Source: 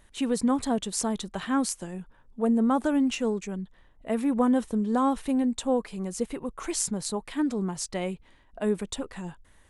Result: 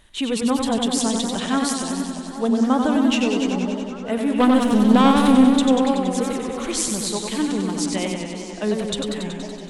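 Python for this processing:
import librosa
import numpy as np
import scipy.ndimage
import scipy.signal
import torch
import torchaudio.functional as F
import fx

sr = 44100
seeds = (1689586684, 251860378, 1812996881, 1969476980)

y = fx.leveller(x, sr, passes=2, at=(4.4, 5.5))
y = fx.peak_eq(y, sr, hz=3400.0, db=8.0, octaves=0.94)
y = fx.echo_stepped(y, sr, ms=406, hz=260.0, octaves=1.4, feedback_pct=70, wet_db=-5.5)
y = fx.echo_warbled(y, sr, ms=94, feedback_pct=75, rate_hz=2.8, cents=94, wet_db=-5.0)
y = F.gain(torch.from_numpy(y), 3.0).numpy()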